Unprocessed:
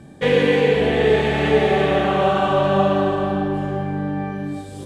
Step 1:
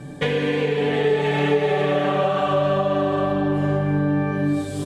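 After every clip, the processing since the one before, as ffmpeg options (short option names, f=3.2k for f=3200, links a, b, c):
-af "acompressor=threshold=-24dB:ratio=10,aecho=1:1:6.9:0.94,volume=3.5dB"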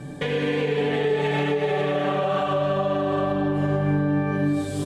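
-af "alimiter=limit=-14.5dB:level=0:latency=1:release=118"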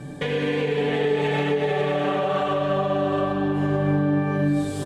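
-af "aecho=1:1:667:0.299"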